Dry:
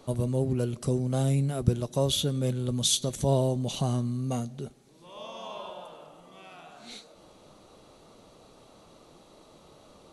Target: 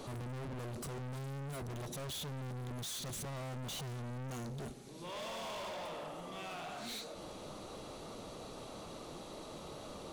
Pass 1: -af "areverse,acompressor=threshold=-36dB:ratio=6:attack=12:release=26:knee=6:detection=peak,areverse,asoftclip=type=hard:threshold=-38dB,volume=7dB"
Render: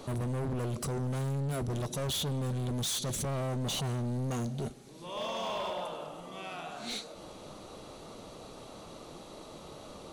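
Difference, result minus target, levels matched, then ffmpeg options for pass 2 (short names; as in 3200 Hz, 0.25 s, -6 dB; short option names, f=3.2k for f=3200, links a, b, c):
hard clip: distortion -5 dB
-af "areverse,acompressor=threshold=-36dB:ratio=6:attack=12:release=26:knee=6:detection=peak,areverse,asoftclip=type=hard:threshold=-48.5dB,volume=7dB"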